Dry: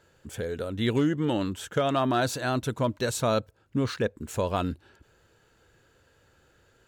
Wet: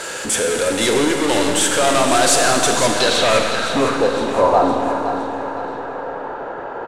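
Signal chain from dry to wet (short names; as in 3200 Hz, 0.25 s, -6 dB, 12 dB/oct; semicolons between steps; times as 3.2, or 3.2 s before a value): HPF 450 Hz 12 dB/oct; power-law curve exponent 0.35; low-pass sweep 9100 Hz -> 880 Hz, 2.6–3.94; feedback echo 0.513 s, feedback 49%, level -10 dB; Schroeder reverb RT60 2.8 s, combs from 32 ms, DRR 2.5 dB; gain +2.5 dB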